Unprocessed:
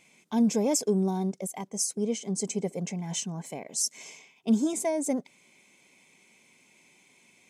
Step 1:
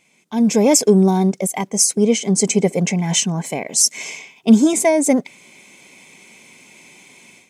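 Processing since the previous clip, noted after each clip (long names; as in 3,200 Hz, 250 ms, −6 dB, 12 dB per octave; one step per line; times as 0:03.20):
dynamic equaliser 2,200 Hz, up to +5 dB, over −55 dBFS, Q 1.6
automatic gain control gain up to 14 dB
level +1 dB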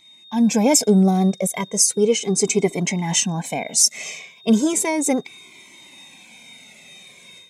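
steady tone 3,700 Hz −45 dBFS
flanger whose copies keep moving one way falling 0.35 Hz
level +3 dB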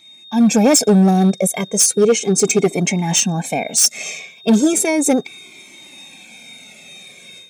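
hard clipping −12.5 dBFS, distortion −15 dB
notch comb filter 1,000 Hz
level +5.5 dB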